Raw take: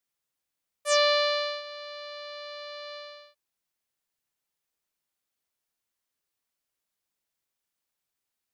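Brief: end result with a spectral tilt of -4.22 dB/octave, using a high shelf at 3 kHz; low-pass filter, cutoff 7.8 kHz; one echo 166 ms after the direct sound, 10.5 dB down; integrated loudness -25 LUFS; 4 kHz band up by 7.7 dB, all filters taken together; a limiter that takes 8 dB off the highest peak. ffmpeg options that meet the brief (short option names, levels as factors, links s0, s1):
-af "lowpass=7800,highshelf=f=3000:g=3,equalizer=f=4000:t=o:g=7,alimiter=limit=0.178:level=0:latency=1,aecho=1:1:166:0.299,volume=1.41"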